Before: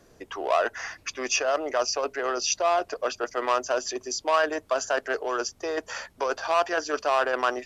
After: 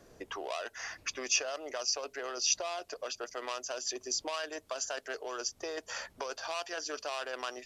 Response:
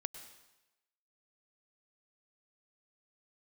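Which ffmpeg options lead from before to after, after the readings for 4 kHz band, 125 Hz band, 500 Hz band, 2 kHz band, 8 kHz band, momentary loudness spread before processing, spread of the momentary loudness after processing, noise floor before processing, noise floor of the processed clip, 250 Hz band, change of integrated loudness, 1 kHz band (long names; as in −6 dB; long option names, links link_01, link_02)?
−3.0 dB, can't be measured, −13.0 dB, −10.0 dB, −2.0 dB, 8 LU, 10 LU, −58 dBFS, −63 dBFS, −11.5 dB, −9.0 dB, −14.5 dB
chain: -filter_complex "[0:a]equalizer=frequency=560:width=1.5:gain=2,acrossover=split=2800[link_01][link_02];[link_01]acompressor=threshold=-37dB:ratio=4[link_03];[link_03][link_02]amix=inputs=2:normalize=0,volume=-2dB"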